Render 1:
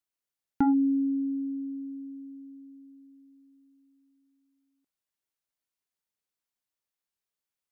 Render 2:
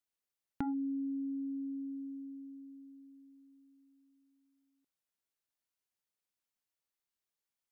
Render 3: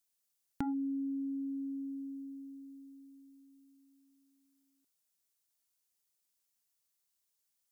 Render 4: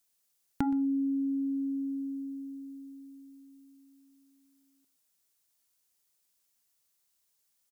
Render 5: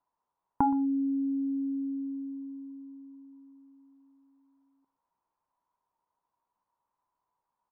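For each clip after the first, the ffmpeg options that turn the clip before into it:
-af "acompressor=threshold=0.0178:ratio=3,volume=0.75"
-af "bass=f=250:g=1,treble=f=4000:g=11"
-af "aecho=1:1:121:0.119,volume=2"
-af "lowpass=f=970:t=q:w=11"

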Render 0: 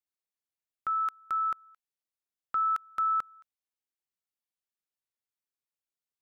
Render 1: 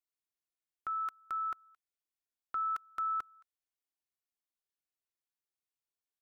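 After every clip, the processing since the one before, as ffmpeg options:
-af "aecho=1:1:2.8:0.38,volume=0.562"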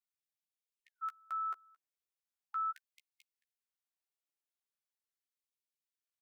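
-filter_complex "[0:a]asplit=2[s0][s1];[s1]adelay=13,volume=0.447[s2];[s0][s2]amix=inputs=2:normalize=0,afftfilt=real='re*gte(b*sr/1024,250*pow(2200/250,0.5+0.5*sin(2*PI*0.4*pts/sr)))':imag='im*gte(b*sr/1024,250*pow(2200/250,0.5+0.5*sin(2*PI*0.4*pts/sr)))':win_size=1024:overlap=0.75,volume=0.596"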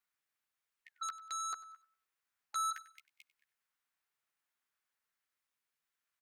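-filter_complex "[0:a]acrossover=split=1400|1600[s0][s1][s2];[s1]aeval=exprs='0.00891*sin(PI/2*5.01*val(0)/0.00891)':c=same[s3];[s0][s3][s2]amix=inputs=3:normalize=0,aecho=1:1:96|192|288:0.133|0.0427|0.0137,volume=1.33"

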